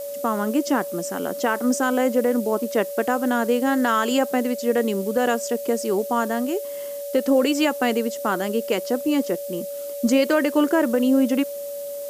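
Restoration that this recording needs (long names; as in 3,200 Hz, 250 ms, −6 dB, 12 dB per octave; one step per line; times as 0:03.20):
notch filter 570 Hz, Q 30
noise reduction from a noise print 30 dB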